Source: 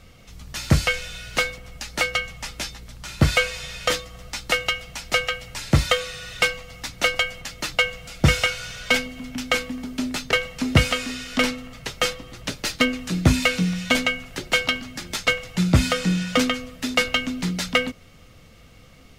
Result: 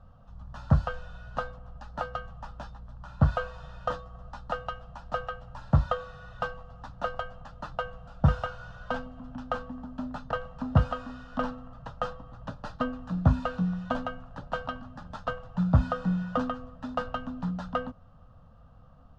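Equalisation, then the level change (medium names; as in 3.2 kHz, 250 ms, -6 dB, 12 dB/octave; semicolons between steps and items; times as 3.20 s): Chebyshev low-pass 1.3 kHz, order 2; static phaser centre 900 Hz, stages 4; -1.5 dB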